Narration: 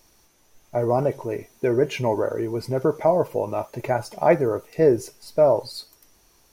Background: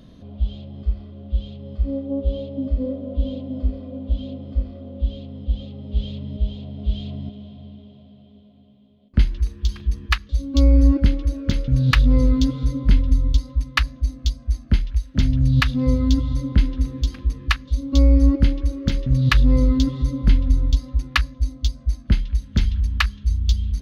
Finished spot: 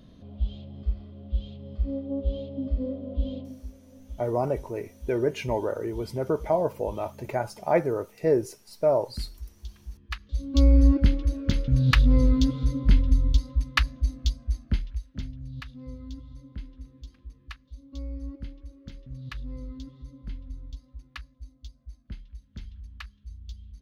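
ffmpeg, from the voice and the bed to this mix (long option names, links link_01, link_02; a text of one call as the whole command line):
ffmpeg -i stem1.wav -i stem2.wav -filter_complex "[0:a]adelay=3450,volume=-5dB[link_01];[1:a]volume=9.5dB,afade=type=out:start_time=3.38:duration=0.2:silence=0.223872,afade=type=in:start_time=10.06:duration=0.54:silence=0.177828,afade=type=out:start_time=14.19:duration=1.16:silence=0.11885[link_02];[link_01][link_02]amix=inputs=2:normalize=0" out.wav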